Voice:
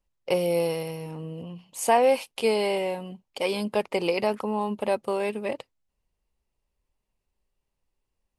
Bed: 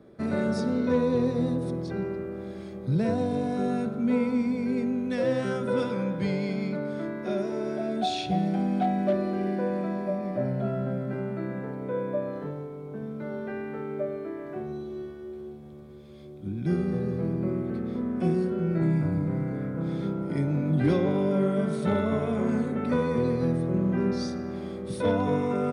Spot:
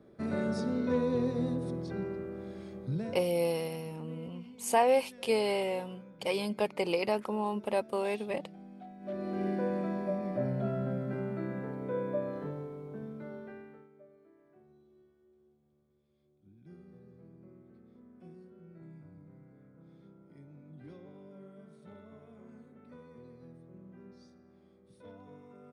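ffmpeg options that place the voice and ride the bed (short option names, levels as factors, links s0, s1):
-filter_complex "[0:a]adelay=2850,volume=0.562[s0];[1:a]volume=5.01,afade=t=out:st=2.79:d=0.45:silence=0.125893,afade=t=in:st=9:d=0.45:silence=0.105925,afade=t=out:st=12.72:d=1.18:silence=0.0707946[s1];[s0][s1]amix=inputs=2:normalize=0"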